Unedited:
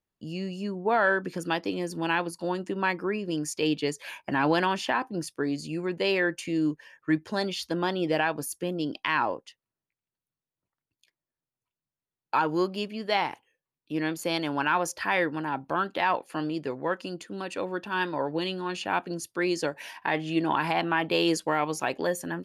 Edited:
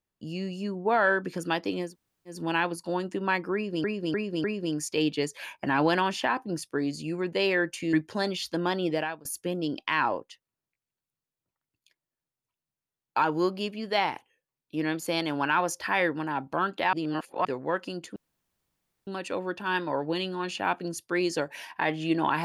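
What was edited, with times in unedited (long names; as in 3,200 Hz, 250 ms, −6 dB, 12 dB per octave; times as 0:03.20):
0:01.88: splice in room tone 0.45 s, crossfade 0.16 s
0:03.09–0:03.39: repeat, 4 plays
0:06.58–0:07.10: remove
0:08.03–0:08.42: fade out, to −24 dB
0:16.10–0:16.62: reverse
0:17.33: splice in room tone 0.91 s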